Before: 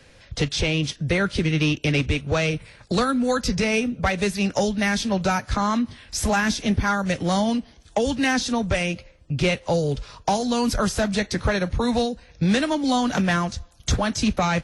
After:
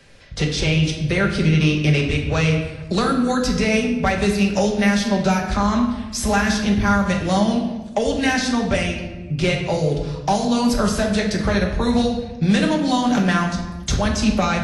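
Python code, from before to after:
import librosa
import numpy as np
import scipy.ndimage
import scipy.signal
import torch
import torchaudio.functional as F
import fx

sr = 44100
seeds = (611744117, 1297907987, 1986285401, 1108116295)

y = fx.room_shoebox(x, sr, seeds[0], volume_m3=650.0, walls='mixed', distance_m=1.2)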